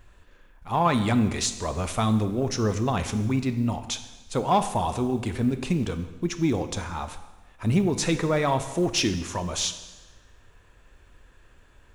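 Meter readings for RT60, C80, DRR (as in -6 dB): 1.2 s, 13.0 dB, 9.0 dB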